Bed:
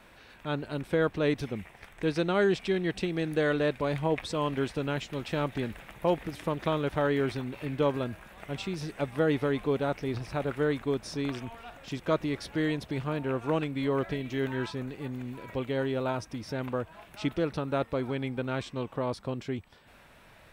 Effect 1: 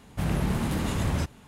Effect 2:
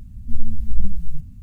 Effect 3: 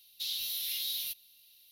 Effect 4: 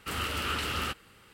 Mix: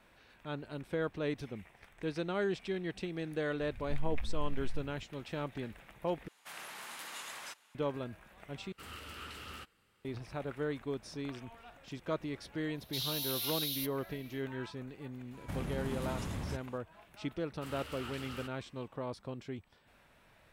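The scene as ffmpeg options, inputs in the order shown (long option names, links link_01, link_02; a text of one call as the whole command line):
ffmpeg -i bed.wav -i cue0.wav -i cue1.wav -i cue2.wav -i cue3.wav -filter_complex "[1:a]asplit=2[link_01][link_02];[4:a]asplit=2[link_03][link_04];[0:a]volume=-8.5dB[link_05];[2:a]acompressor=threshold=-14dB:ratio=6:attack=3.2:release=140:knee=1:detection=peak[link_06];[link_01]highpass=1200[link_07];[link_02]acompressor=threshold=-27dB:ratio=6:attack=3.2:release=140:knee=1:detection=peak[link_08];[link_05]asplit=3[link_09][link_10][link_11];[link_09]atrim=end=6.284[link_12];[link_07]atrim=end=1.47,asetpts=PTS-STARTPTS,volume=-6.5dB[link_13];[link_10]atrim=start=7.746:end=8.724[link_14];[link_03]atrim=end=1.33,asetpts=PTS-STARTPTS,volume=-15dB[link_15];[link_11]atrim=start=10.046[link_16];[link_06]atrim=end=1.42,asetpts=PTS-STARTPTS,volume=-12.5dB,afade=type=in:duration=0.004:curve=hsin,afade=type=out:start_time=1.416:duration=0.004:curve=hsin,adelay=159201S[link_17];[3:a]atrim=end=1.71,asetpts=PTS-STARTPTS,volume=-2dB,afade=type=in:duration=0.1,afade=type=out:start_time=1.61:duration=0.1,adelay=12730[link_18];[link_08]atrim=end=1.47,asetpts=PTS-STARTPTS,volume=-7.5dB,afade=type=in:duration=0.004:curve=hsin,afade=type=out:start_time=1.466:duration=0.004:curve=hsin,adelay=15310[link_19];[link_04]atrim=end=1.33,asetpts=PTS-STARTPTS,volume=-14.5dB,afade=type=in:duration=0.004:curve=hsin,afade=type=out:start_time=1.326:duration=0.004:curve=hsin,adelay=17550[link_20];[link_12][link_13]acrossfade=duration=0.004:curve1=hsin:curve2=hsin[link_21];[link_21][link_14]acrossfade=duration=0.004:curve1=hsin:curve2=hsin[link_22];[link_22][link_15]acrossfade=duration=0.004:curve1=hsin:curve2=hsin[link_23];[link_23][link_16]acrossfade=duration=0.004:curve1=hsin:curve2=hsin[link_24];[link_24][link_17][link_18][link_19][link_20]amix=inputs=5:normalize=0" out.wav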